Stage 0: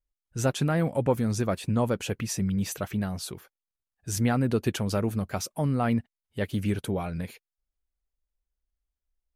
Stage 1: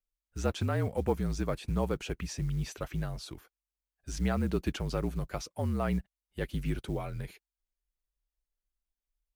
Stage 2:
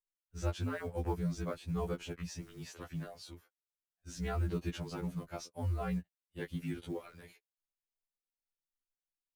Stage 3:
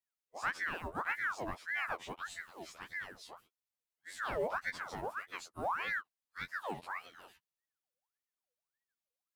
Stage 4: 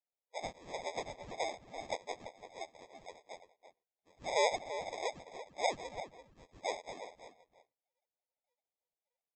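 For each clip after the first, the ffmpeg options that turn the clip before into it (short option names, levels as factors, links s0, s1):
-filter_complex "[0:a]acrossover=split=6500[s0][s1];[s1]acompressor=threshold=0.00251:ratio=4:attack=1:release=60[s2];[s0][s2]amix=inputs=2:normalize=0,acrusher=bits=8:mode=log:mix=0:aa=0.000001,afreqshift=-48,volume=0.562"
-filter_complex "[0:a]asplit=2[s0][s1];[s1]aeval=exprs='sgn(val(0))*max(abs(val(0))-0.00266,0)':c=same,volume=0.668[s2];[s0][s2]amix=inputs=2:normalize=0,afftfilt=real='re*2*eq(mod(b,4),0)':imag='im*2*eq(mod(b,4),0)':win_size=2048:overlap=0.75,volume=0.422"
-af "volume=17.8,asoftclip=hard,volume=0.0562,aeval=exprs='val(0)*sin(2*PI*1200*n/s+1200*0.6/1.7*sin(2*PI*1.7*n/s))':c=same,volume=1.12"
-filter_complex "[0:a]asuperpass=centerf=590:order=4:qfactor=1.9,aresample=16000,acrusher=samples=11:mix=1:aa=0.000001,aresample=44100,asplit=2[s0][s1];[s1]adelay=338.2,volume=0.316,highshelf=f=4000:g=-7.61[s2];[s0][s2]amix=inputs=2:normalize=0,volume=2.37"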